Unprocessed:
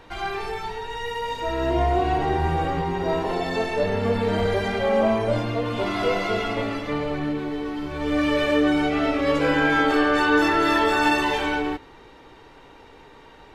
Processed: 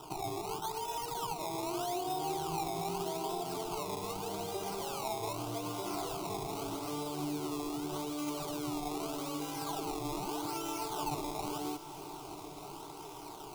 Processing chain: HPF 210 Hz 6 dB/oct; compressor 3:1, threshold -38 dBFS, peak gain reduction 16.5 dB; limiter -30 dBFS, peak gain reduction 5.5 dB; decimation with a swept rate 20×, swing 100% 0.82 Hz; fixed phaser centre 350 Hz, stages 8; diffused feedback echo 0.97 s, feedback 65%, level -13.5 dB; gain +3.5 dB

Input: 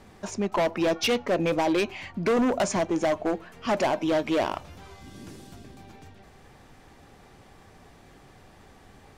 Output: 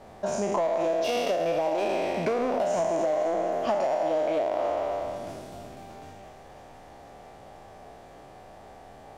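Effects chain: spectral trails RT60 1.89 s; bell 650 Hz +14 dB 0.97 oct; limiter -6.5 dBFS, peak gain reduction 7.5 dB; compressor, threshold -19 dBFS, peak gain reduction 9 dB; thinning echo 0.484 s, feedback 79%, high-pass 1000 Hz, level -16 dB; gain -4.5 dB

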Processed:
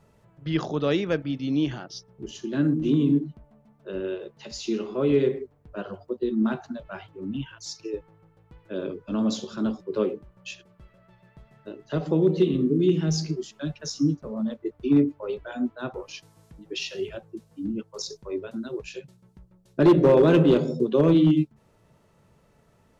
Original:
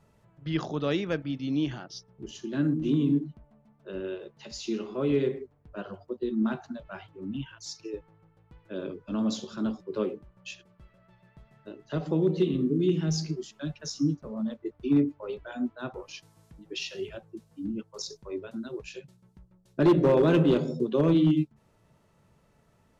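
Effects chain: bell 460 Hz +2.5 dB 0.72 oct; gain +3 dB

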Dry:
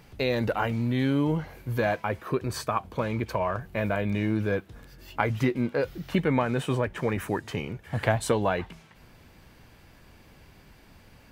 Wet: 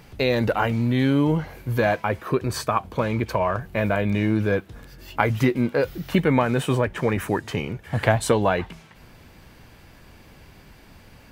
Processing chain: 5.17–6.82 high shelf 12000 Hz +8 dB; gain +5 dB

